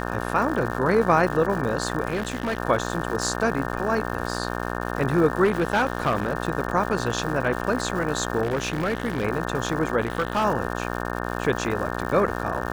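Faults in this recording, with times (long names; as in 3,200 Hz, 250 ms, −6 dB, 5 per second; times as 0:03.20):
mains buzz 60 Hz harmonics 30 −29 dBFS
surface crackle 230 per second −31 dBFS
0:02.10–0:02.58: clipping −21.5 dBFS
0:05.44–0:06.35: clipping −16 dBFS
0:08.42–0:09.25: clipping −20 dBFS
0:10.01–0:10.45: clipping −18.5 dBFS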